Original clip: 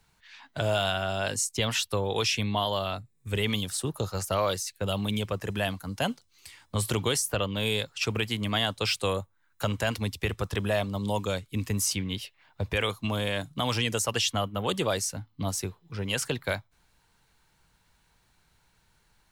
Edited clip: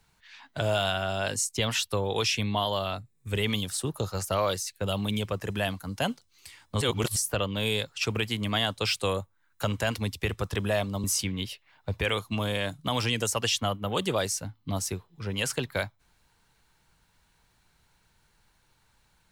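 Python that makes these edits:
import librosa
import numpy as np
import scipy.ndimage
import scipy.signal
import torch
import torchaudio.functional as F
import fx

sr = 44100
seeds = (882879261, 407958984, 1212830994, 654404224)

y = fx.edit(x, sr, fx.reverse_span(start_s=6.81, length_s=0.35),
    fx.cut(start_s=11.04, length_s=0.72), tone=tone)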